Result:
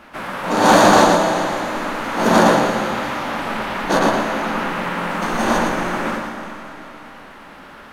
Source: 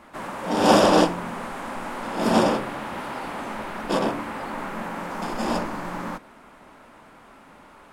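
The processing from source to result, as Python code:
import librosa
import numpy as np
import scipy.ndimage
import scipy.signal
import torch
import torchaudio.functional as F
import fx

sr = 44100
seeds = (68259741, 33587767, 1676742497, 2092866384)

p1 = fx.high_shelf(x, sr, hz=9000.0, db=-8.0)
p2 = fx.rider(p1, sr, range_db=4, speed_s=2.0)
p3 = p1 + (p2 * librosa.db_to_amplitude(2.5))
p4 = fx.rev_freeverb(p3, sr, rt60_s=3.2, hf_ratio=0.95, predelay_ms=85, drr_db=6.5)
p5 = fx.formant_shift(p4, sr, semitones=4)
p6 = np.clip(10.0 ** (2.0 / 20.0) * p5, -1.0, 1.0) / 10.0 ** (2.0 / 20.0)
p7 = p6 + fx.echo_single(p6, sr, ms=115, db=-5.0, dry=0)
y = p7 * librosa.db_to_amplitude(-3.0)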